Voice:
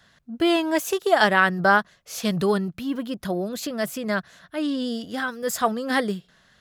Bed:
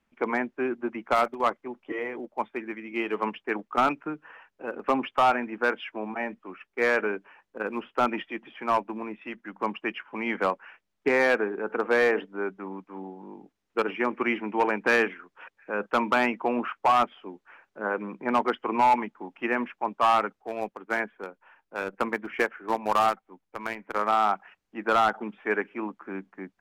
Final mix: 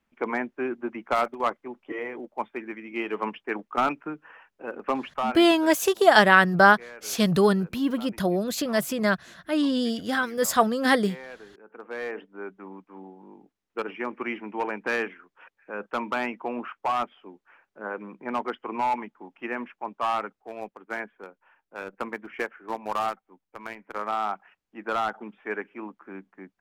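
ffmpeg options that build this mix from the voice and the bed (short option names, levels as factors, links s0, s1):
-filter_complex "[0:a]adelay=4950,volume=1.26[s0];[1:a]volume=5.01,afade=t=out:st=4.8:d=0.81:silence=0.112202,afade=t=in:st=11.66:d=1:silence=0.177828[s1];[s0][s1]amix=inputs=2:normalize=0"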